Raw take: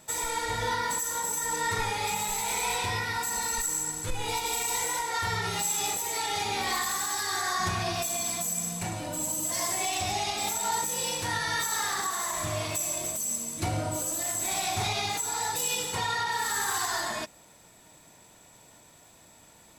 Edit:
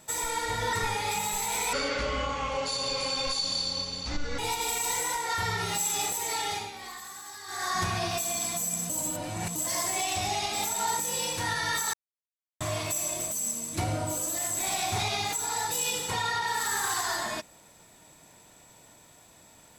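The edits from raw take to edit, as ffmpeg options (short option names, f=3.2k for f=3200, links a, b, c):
-filter_complex "[0:a]asplit=10[a][b][c][d][e][f][g][h][i][j];[a]atrim=end=0.732[k];[b]atrim=start=1.688:end=2.694[l];[c]atrim=start=2.69:end=4.23,asetpts=PTS-STARTPTS,asetrate=25578,aresample=44100,atrim=end_sample=117093,asetpts=PTS-STARTPTS[m];[d]atrim=start=4.226:end=6.56,asetpts=PTS-STARTPTS,afade=t=out:st=1.974:d=0.36:c=qsin:silence=0.237137[n];[e]atrim=start=6.56:end=7.31,asetpts=PTS-STARTPTS,volume=-12.5dB[o];[f]atrim=start=7.31:end=8.742,asetpts=PTS-STARTPTS,afade=t=in:d=0.36:c=qsin:silence=0.237137[p];[g]atrim=start=8.738:end=9.402,asetpts=PTS-STARTPTS,areverse[q];[h]atrim=start=9.398:end=11.78,asetpts=PTS-STARTPTS,afade=t=out:st=2.378:d=0.004:c=hsin[r];[i]atrim=start=11.78:end=12.45,asetpts=PTS-STARTPTS,volume=0[s];[j]atrim=start=12.45,asetpts=PTS-STARTPTS,afade=t=in:d=0.004:c=hsin[t];[k][l]acrossfade=d=0.004:c1=hsin:c2=hsin[u];[u][m]acrossfade=d=0.004:c1=hsin:c2=hsin[v];[n][o][p]concat=n=3:v=0:a=1[w];[v][w]acrossfade=d=0.004:c1=hsin:c2=hsin[x];[x][q]acrossfade=d=0.004:c1=hsin:c2=hsin[y];[r][s][t]concat=n=3:v=0:a=1[z];[y][z]acrossfade=d=0.004:c1=hsin:c2=hsin"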